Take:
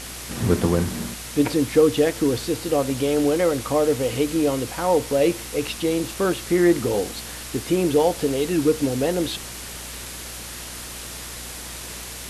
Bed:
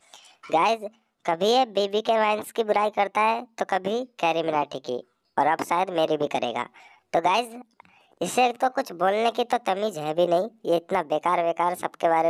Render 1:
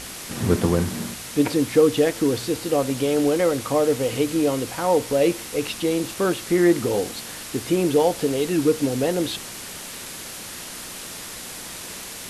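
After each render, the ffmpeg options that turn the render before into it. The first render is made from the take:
ffmpeg -i in.wav -af "bandreject=frequency=60:width_type=h:width=4,bandreject=frequency=120:width_type=h:width=4" out.wav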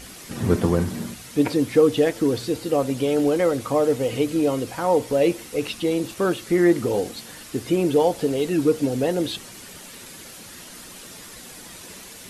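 ffmpeg -i in.wav -af "afftdn=noise_reduction=8:noise_floor=-36" out.wav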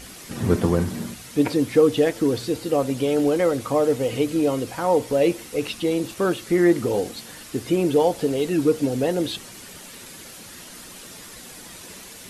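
ffmpeg -i in.wav -af anull out.wav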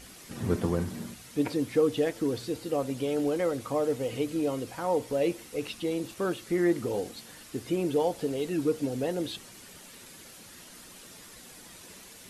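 ffmpeg -i in.wav -af "volume=-8dB" out.wav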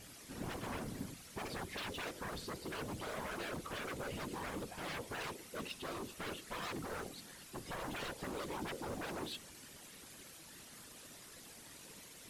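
ffmpeg -i in.wav -af "aeval=exprs='0.0266*(abs(mod(val(0)/0.0266+3,4)-2)-1)':channel_layout=same,afftfilt=real='hypot(re,im)*cos(2*PI*random(0))':imag='hypot(re,im)*sin(2*PI*random(1))':win_size=512:overlap=0.75" out.wav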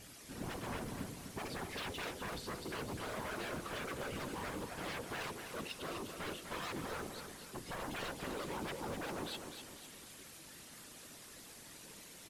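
ffmpeg -i in.wav -af "aecho=1:1:251|502|753|1004|1255:0.422|0.177|0.0744|0.0312|0.0131" out.wav

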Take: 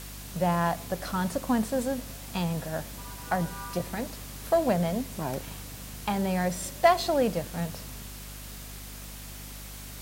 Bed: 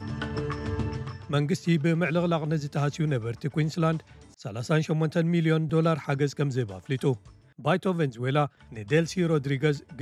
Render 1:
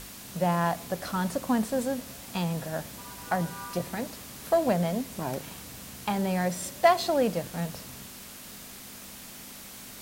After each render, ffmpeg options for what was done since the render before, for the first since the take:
ffmpeg -i in.wav -af "bandreject=frequency=50:width_type=h:width=6,bandreject=frequency=100:width_type=h:width=6,bandreject=frequency=150:width_type=h:width=6" out.wav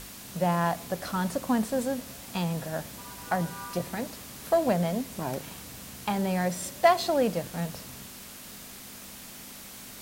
ffmpeg -i in.wav -af anull out.wav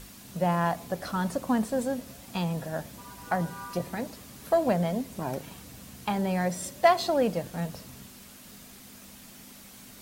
ffmpeg -i in.wav -af "afftdn=noise_reduction=6:noise_floor=-45" out.wav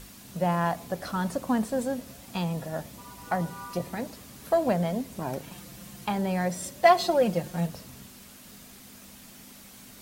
ffmpeg -i in.wav -filter_complex "[0:a]asettb=1/sr,asplit=3[link_01][link_02][link_03];[link_01]atrim=end=2.504[link_04];[link_02]atrim=start=2.5:end=3.97,asetpts=PTS-STARTPTS,afade=type=in:duration=0.004:curve=qsin,afade=type=out:start_time=1.466:duration=0.004:curve=qsin,bandreject=frequency=1600:width=12[link_05];[link_03]atrim=start=3.966[link_06];[link_04][link_05]acrossfade=duration=0.004:curve1=hsin:curve2=qsin[link_07];[link_07][link_06]acrossfade=duration=0.004:curve1=qsin:curve2=hsin,asettb=1/sr,asplit=3[link_08][link_09][link_10];[link_08]atrim=end=5.514[link_11];[link_09]atrim=start=5.51:end=6.06,asetpts=PTS-STARTPTS,afade=type=in:duration=0.004:curve=qsin,afade=type=out:start_time=0.546:duration=0.004:curve=qsin,aecho=1:1:5.7:0.66,atrim=end_sample=24255[link_12];[link_10]atrim=start=6.056[link_13];[link_11][link_12]acrossfade=duration=0.004:curve1=hsin:curve2=qsin[link_14];[link_14][link_13]acrossfade=duration=0.004:curve1=qsin:curve2=hsin,asettb=1/sr,asplit=3[link_15][link_16][link_17];[link_15]atrim=end=6.854[link_18];[link_16]atrim=start=6.85:end=7.67,asetpts=PTS-STARTPTS,afade=type=in:duration=0.004:curve=qsin,afade=type=out:start_time=0.816:duration=0.004:curve=qsin,aecho=1:1:5.6:0.65,atrim=end_sample=36162[link_19];[link_17]atrim=start=7.666[link_20];[link_18][link_19]acrossfade=duration=0.004:curve1=hsin:curve2=qsin[link_21];[link_21][link_20]acrossfade=duration=0.004:curve1=qsin:curve2=hsin" out.wav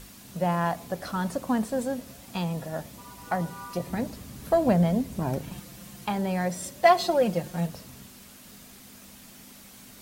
ffmpeg -i in.wav -filter_complex "[0:a]asettb=1/sr,asplit=3[link_01][link_02][link_03];[link_01]atrim=end=3.884[link_04];[link_02]atrim=start=3.88:end=5.6,asetpts=PTS-STARTPTS,afade=type=in:duration=0.004:curve=qsin,afade=type=out:start_time=1.716:duration=0.004:curve=qsin,lowshelf=frequency=230:gain=10.5[link_05];[link_03]atrim=start=5.596[link_06];[link_04][link_05]acrossfade=duration=0.004:curve1=hsin:curve2=qsin[link_07];[link_07][link_06]acrossfade=duration=0.004:curve1=qsin:curve2=hsin" out.wav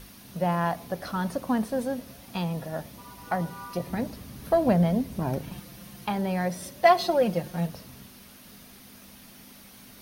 ffmpeg -i in.wav -af "equalizer=frequency=7500:width_type=o:width=0.23:gain=-13.5" out.wav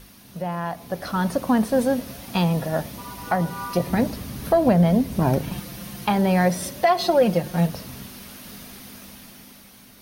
ffmpeg -i in.wav -af "alimiter=limit=-18dB:level=0:latency=1:release=286,dynaudnorm=framelen=260:gausssize=9:maxgain=9dB" out.wav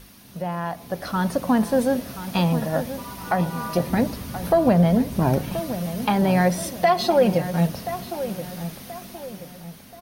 ffmpeg -i in.wav -filter_complex "[0:a]asplit=2[link_01][link_02];[link_02]adelay=1029,lowpass=frequency=2000:poles=1,volume=-11dB,asplit=2[link_03][link_04];[link_04]adelay=1029,lowpass=frequency=2000:poles=1,volume=0.41,asplit=2[link_05][link_06];[link_06]adelay=1029,lowpass=frequency=2000:poles=1,volume=0.41,asplit=2[link_07][link_08];[link_08]adelay=1029,lowpass=frequency=2000:poles=1,volume=0.41[link_09];[link_01][link_03][link_05][link_07][link_09]amix=inputs=5:normalize=0" out.wav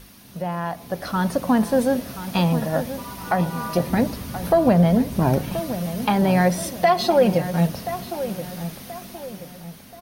ffmpeg -i in.wav -af "volume=1dB" out.wav

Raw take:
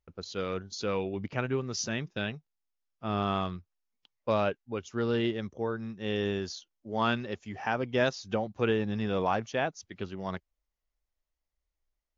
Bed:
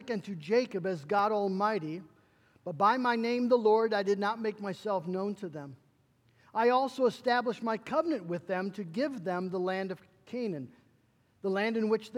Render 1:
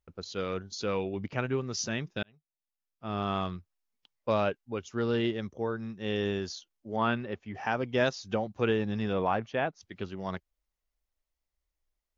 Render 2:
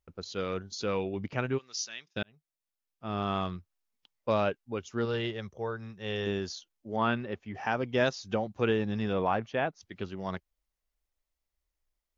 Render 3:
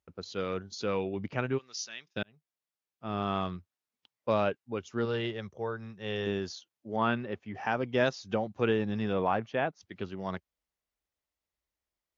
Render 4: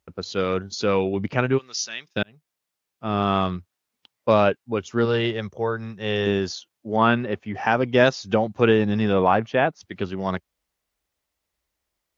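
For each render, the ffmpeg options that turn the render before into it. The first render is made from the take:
ffmpeg -i in.wav -filter_complex "[0:a]asettb=1/sr,asplit=3[link_01][link_02][link_03];[link_01]atrim=end=6.964[link_04];[link_02]atrim=start=6.96:end=7.55,asetpts=PTS-STARTPTS,afade=type=in:duration=0.004:curve=qsin,afade=type=out:start_time=0.586:duration=0.004:curve=qsin,lowpass=2700[link_05];[link_03]atrim=start=7.546[link_06];[link_04][link_05]acrossfade=duration=0.004:curve1=hsin:curve2=qsin[link_07];[link_07][link_06]acrossfade=duration=0.004:curve1=qsin:curve2=hsin,asettb=1/sr,asplit=3[link_08][link_09][link_10];[link_08]atrim=end=9.134[link_11];[link_09]atrim=start=9.13:end=9.81,asetpts=PTS-STARTPTS,afade=type=in:duration=0.004:curve=qsin,afade=type=out:start_time=0.676:duration=0.004:curve=qsin,lowpass=3100[link_12];[link_10]atrim=start=9.806[link_13];[link_11][link_12]acrossfade=duration=0.004:curve1=hsin:curve2=qsin[link_14];[link_14][link_13]acrossfade=duration=0.004:curve1=qsin:curve2=hsin,asplit=2[link_15][link_16];[link_15]atrim=end=2.23,asetpts=PTS-STARTPTS,afade=type=out:start_time=2.226:duration=0.004:curve=hsin[link_17];[link_16]atrim=start=2.23,asetpts=PTS-STARTPTS,afade=type=in:duration=1.27[link_18];[link_17][link_18]concat=n=2:v=0:a=1" out.wav
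ffmpeg -i in.wav -filter_complex "[0:a]asplit=3[link_01][link_02][link_03];[link_01]afade=type=out:start_time=1.57:duration=0.02[link_04];[link_02]bandpass=frequency=4700:width_type=q:width=0.97,afade=type=in:start_time=1.57:duration=0.02,afade=type=out:start_time=2.15:duration=0.02[link_05];[link_03]afade=type=in:start_time=2.15:duration=0.02[link_06];[link_04][link_05][link_06]amix=inputs=3:normalize=0,asettb=1/sr,asplit=3[link_07][link_08][link_09];[link_07]atrim=end=5.054[link_10];[link_08]atrim=start=5.05:end=6.27,asetpts=PTS-STARTPTS,afade=type=in:duration=0.004:curve=qsin,afade=type=out:start_time=1.216:duration=0.004:curve=qsin,equalizer=frequency=270:width_type=o:width=0.67:gain=-12.5[link_11];[link_09]atrim=start=6.266[link_12];[link_10][link_11]acrossfade=duration=0.004:curve1=hsin:curve2=qsin[link_13];[link_13][link_12]acrossfade=duration=0.004:curve1=qsin:curve2=hsin" out.wav
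ffmpeg -i in.wav -af "highpass=84,highshelf=frequency=6100:gain=-6.5" out.wav
ffmpeg -i in.wav -af "volume=10dB" out.wav

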